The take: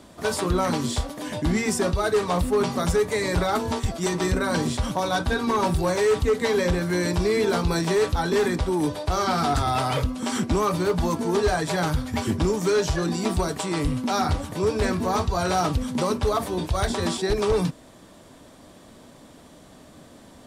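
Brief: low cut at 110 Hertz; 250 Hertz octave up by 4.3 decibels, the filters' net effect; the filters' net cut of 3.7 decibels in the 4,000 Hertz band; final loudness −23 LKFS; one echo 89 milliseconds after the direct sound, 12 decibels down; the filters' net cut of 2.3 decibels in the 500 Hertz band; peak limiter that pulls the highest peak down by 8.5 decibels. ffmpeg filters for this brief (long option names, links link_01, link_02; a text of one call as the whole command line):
ffmpeg -i in.wav -af "highpass=110,equalizer=frequency=250:width_type=o:gain=7.5,equalizer=frequency=500:width_type=o:gain=-6,equalizer=frequency=4000:width_type=o:gain=-4.5,alimiter=limit=-19dB:level=0:latency=1,aecho=1:1:89:0.251,volume=4dB" out.wav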